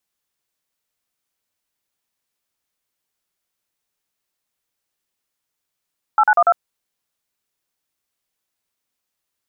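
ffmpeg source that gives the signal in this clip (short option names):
-f lavfi -i "aevalsrc='0.237*clip(min(mod(t,0.096),0.055-mod(t,0.096))/0.002,0,1)*(eq(floor(t/0.096),0)*(sin(2*PI*852*mod(t,0.096))+sin(2*PI*1336*mod(t,0.096)))+eq(floor(t/0.096),1)*(sin(2*PI*852*mod(t,0.096))+sin(2*PI*1477*mod(t,0.096)))+eq(floor(t/0.096),2)*(sin(2*PI*697*mod(t,0.096))+sin(2*PI*1209*mod(t,0.096)))+eq(floor(t/0.096),3)*(sin(2*PI*697*mod(t,0.096))+sin(2*PI*1336*mod(t,0.096))))':d=0.384:s=44100"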